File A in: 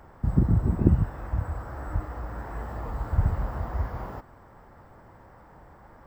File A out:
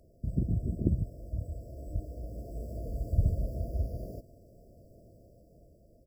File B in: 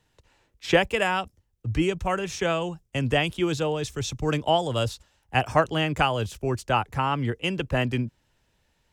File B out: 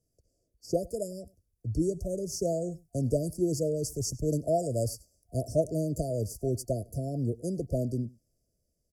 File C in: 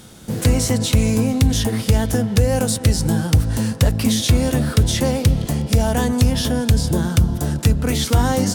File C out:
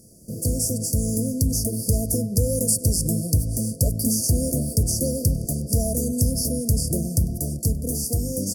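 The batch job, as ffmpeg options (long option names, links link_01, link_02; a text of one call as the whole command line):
ffmpeg -i in.wav -af "afftfilt=real='re*(1-between(b*sr/4096,710,4500))':imag='im*(1-between(b*sr/4096,710,4500))':win_size=4096:overlap=0.75,equalizer=frequency=11000:width=1.9:gain=8.5,dynaudnorm=framelen=360:gausssize=7:maxgain=6dB,aecho=1:1:99:0.0668,adynamicequalizer=threshold=0.0126:dfrequency=6600:dqfactor=0.7:tfrequency=6600:tqfactor=0.7:attack=5:release=100:ratio=0.375:range=3.5:mode=boostabove:tftype=highshelf,volume=-8.5dB" out.wav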